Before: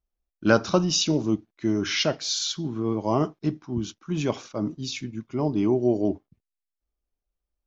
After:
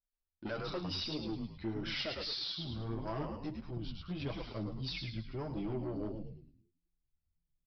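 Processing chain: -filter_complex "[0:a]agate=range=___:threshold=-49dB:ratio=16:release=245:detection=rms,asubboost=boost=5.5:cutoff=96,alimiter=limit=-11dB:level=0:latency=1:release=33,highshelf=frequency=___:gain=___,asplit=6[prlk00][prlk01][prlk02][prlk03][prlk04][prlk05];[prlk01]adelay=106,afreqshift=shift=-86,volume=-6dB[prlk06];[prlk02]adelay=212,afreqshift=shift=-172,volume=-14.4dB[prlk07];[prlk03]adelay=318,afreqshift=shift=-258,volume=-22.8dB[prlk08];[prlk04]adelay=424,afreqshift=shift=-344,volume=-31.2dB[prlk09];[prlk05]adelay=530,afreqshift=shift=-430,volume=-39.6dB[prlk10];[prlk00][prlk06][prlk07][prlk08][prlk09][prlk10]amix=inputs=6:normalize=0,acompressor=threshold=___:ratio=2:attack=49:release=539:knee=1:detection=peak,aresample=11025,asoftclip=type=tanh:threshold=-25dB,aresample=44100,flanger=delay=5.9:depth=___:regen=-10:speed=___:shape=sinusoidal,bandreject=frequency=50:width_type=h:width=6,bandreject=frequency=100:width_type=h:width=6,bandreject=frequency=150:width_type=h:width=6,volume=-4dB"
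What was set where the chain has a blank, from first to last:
-7dB, 3900, 7.5, -29dB, 4.6, 1.6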